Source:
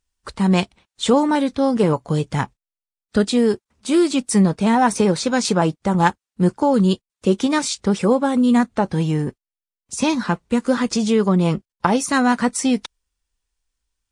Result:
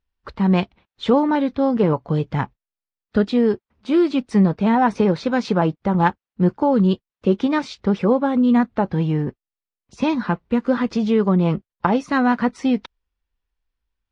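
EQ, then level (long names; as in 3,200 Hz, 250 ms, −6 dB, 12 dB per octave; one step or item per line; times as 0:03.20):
high-frequency loss of the air 270 metres
0.0 dB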